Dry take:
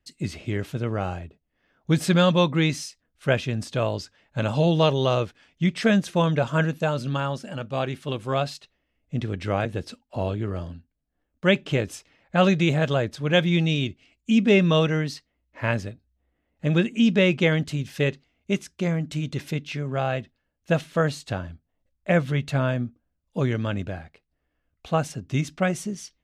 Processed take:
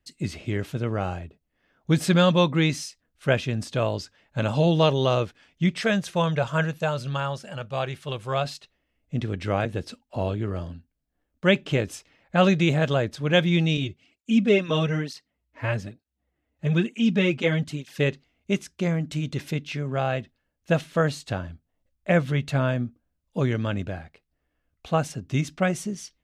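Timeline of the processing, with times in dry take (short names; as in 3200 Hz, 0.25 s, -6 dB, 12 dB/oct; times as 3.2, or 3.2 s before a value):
5.81–8.45 bell 270 Hz -11 dB
13.77–17.99 tape flanging out of phase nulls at 1.1 Hz, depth 5.8 ms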